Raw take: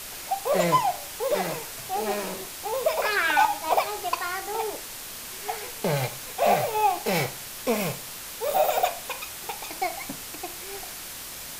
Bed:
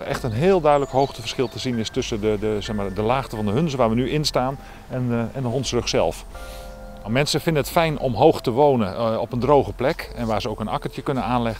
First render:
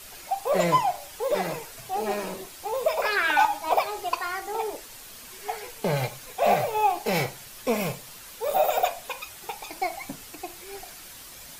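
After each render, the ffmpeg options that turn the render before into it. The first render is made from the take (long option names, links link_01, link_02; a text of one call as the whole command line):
ffmpeg -i in.wav -af "afftdn=noise_reduction=8:noise_floor=-39" out.wav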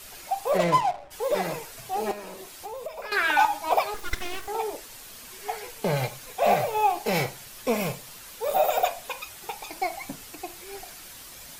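ffmpeg -i in.wav -filter_complex "[0:a]asplit=3[link_01][link_02][link_03];[link_01]afade=type=out:start_time=0.57:duration=0.02[link_04];[link_02]adynamicsmooth=sensitivity=7.5:basefreq=700,afade=type=in:start_time=0.57:duration=0.02,afade=type=out:start_time=1.1:duration=0.02[link_05];[link_03]afade=type=in:start_time=1.1:duration=0.02[link_06];[link_04][link_05][link_06]amix=inputs=3:normalize=0,asettb=1/sr,asplit=3[link_07][link_08][link_09];[link_07]atrim=end=2.114[link_10];[link_08]atrim=start=2.11:end=3.12,asetpts=PTS-STARTPTS,afade=type=in:duration=0.004:curve=qsin,afade=type=out:start_time=1.006:duration=0.004:curve=qsin,acrossover=split=94|310[link_11][link_12][link_13];[link_11]acompressor=threshold=-56dB:ratio=4[link_14];[link_12]acompressor=threshold=-51dB:ratio=4[link_15];[link_13]acompressor=threshold=-37dB:ratio=4[link_16];[link_14][link_15][link_16]amix=inputs=3:normalize=0[link_17];[link_09]atrim=start=3.116[link_18];[link_10][link_17]acrossfade=duration=0.004:curve1=hsin:curve2=qsin[link_19];[link_19][link_18]acrossfade=duration=0.004:curve1=qsin:curve2=hsin,asettb=1/sr,asplit=3[link_20][link_21][link_22];[link_20]atrim=end=3.944[link_23];[link_21]atrim=start=3.94:end=4.48,asetpts=PTS-STARTPTS,afade=type=in:duration=0.004:curve=qsin,afade=type=out:start_time=0.536:duration=0.004:curve=qsin,aeval=exprs='abs(val(0))':channel_layout=same[link_24];[link_22]atrim=start=4.476[link_25];[link_23][link_24]acrossfade=duration=0.004:curve1=hsin:curve2=qsin[link_26];[link_26][link_25]acrossfade=duration=0.004:curve1=qsin:curve2=hsin" out.wav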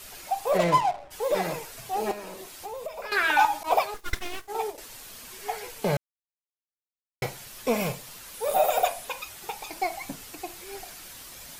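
ffmpeg -i in.wav -filter_complex "[0:a]asettb=1/sr,asplit=3[link_01][link_02][link_03];[link_01]atrim=end=3.634[link_04];[link_02]atrim=start=3.63:end=4.78,asetpts=PTS-STARTPTS,afade=type=in:duration=0.004:curve=qsin,afade=type=out:start_time=1.146:duration=0.004:curve=qsin,agate=range=-33dB:threshold=-29dB:ratio=3:release=100:detection=peak[link_05];[link_03]atrim=start=4.776[link_06];[link_04][link_05]acrossfade=duration=0.004:curve1=hsin:curve2=qsin[link_07];[link_07][link_06]acrossfade=duration=0.004:curve1=qsin:curve2=hsin,asettb=1/sr,asplit=3[link_08][link_09][link_10];[link_08]atrim=end=8.344[link_11];[link_09]atrim=start=8.34:end=9.05,asetpts=PTS-STARTPTS,afade=type=in:duration=0.004:curve=qsin,afade=type=out:start_time=0.706:duration=0.004:curve=qsin,equalizer=frequency=9900:width=3.7:gain=10[link_12];[link_10]atrim=start=9.046[link_13];[link_11][link_12]acrossfade=duration=0.004:curve1=hsin:curve2=qsin[link_14];[link_14][link_13]acrossfade=duration=0.004:curve1=qsin:curve2=hsin,asplit=3[link_15][link_16][link_17];[link_15]atrim=end=5.97,asetpts=PTS-STARTPTS,afade=type=out:start_time=5.966:duration=0.004:curve=hsin[link_18];[link_16]atrim=start=5.97:end=7.22,asetpts=PTS-STARTPTS,volume=0[link_19];[link_17]atrim=start=7.22,asetpts=PTS-STARTPTS,afade=type=in:duration=0.004:curve=hsin[link_20];[link_18][link_19][link_20]concat=n=3:v=0:a=1" out.wav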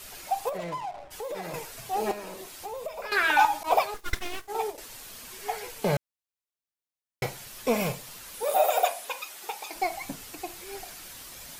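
ffmpeg -i in.wav -filter_complex "[0:a]asettb=1/sr,asplit=3[link_01][link_02][link_03];[link_01]atrim=end=0.494[link_04];[link_02]atrim=start=0.49:end=1.54,asetpts=PTS-STARTPTS,afade=type=in:duration=0.004:curve=qsin,afade=type=out:start_time=1.046:duration=0.004:curve=qsin,acompressor=threshold=-33dB:ratio=4:attack=3.2:release=140:knee=1:detection=peak[link_05];[link_03]atrim=start=1.536[link_06];[link_04][link_05]acrossfade=duration=0.004:curve1=hsin:curve2=qsin[link_07];[link_07][link_06]acrossfade=duration=0.004:curve1=qsin:curve2=hsin,asettb=1/sr,asplit=3[link_08][link_09][link_10];[link_08]atrim=end=8.434[link_11];[link_09]atrim=start=8.43:end=9.75,asetpts=PTS-STARTPTS,afade=type=in:duration=0.004:curve=qsin,afade=type=out:start_time=1.316:duration=0.004:curve=qsin,highpass=340[link_12];[link_10]atrim=start=9.746[link_13];[link_11][link_12]acrossfade=duration=0.004:curve1=hsin:curve2=qsin[link_14];[link_14][link_13]acrossfade=duration=0.004:curve1=qsin:curve2=hsin" out.wav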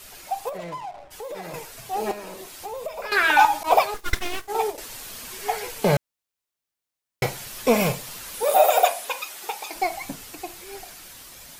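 ffmpeg -i in.wav -af "dynaudnorm=framelen=630:gausssize=9:maxgain=8dB" out.wav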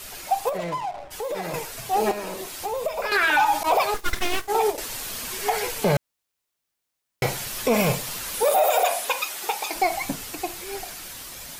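ffmpeg -i in.wav -af "acontrast=34,alimiter=limit=-12dB:level=0:latency=1:release=65" out.wav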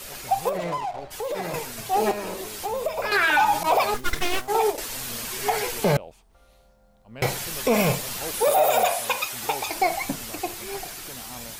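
ffmpeg -i in.wav -i bed.wav -filter_complex "[1:a]volume=-21.5dB[link_01];[0:a][link_01]amix=inputs=2:normalize=0" out.wav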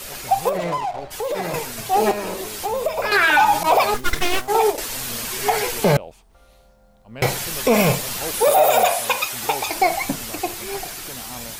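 ffmpeg -i in.wav -af "volume=4.5dB" out.wav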